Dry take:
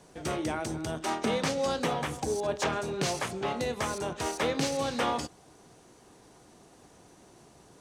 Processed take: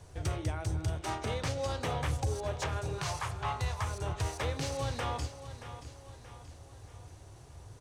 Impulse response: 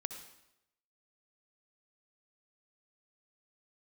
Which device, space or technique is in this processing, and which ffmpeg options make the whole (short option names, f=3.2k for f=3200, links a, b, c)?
car stereo with a boomy subwoofer: -filter_complex "[0:a]asettb=1/sr,asplit=3[a][b][c];[a]atrim=end=2.984[d];[b]atrim=start=2.98:end=3.84,asetpts=PTS-STARTPTS,afade=t=in:d=0.004:c=qsin,afade=t=out:st=0.856:d=0.004:c=qsin,equalizer=f=250:t=o:w=1:g=-9,equalizer=f=500:t=o:w=1:g=-10,equalizer=f=1k:t=o:w=1:g=11[e];[c]atrim=start=3.836[f];[d][e]acrossfade=d=0.004:c1=hsin:c2=qsin[g];[g][f]acrossfade=d=0.004:c1=qsin:c2=hsin,lowshelf=f=140:t=q:w=3:g=13,alimiter=limit=-21.5dB:level=0:latency=1:release=491,aecho=1:1:628|1256|1884|2512|3140:0.237|0.109|0.0502|0.0231|0.0106,volume=-1.5dB"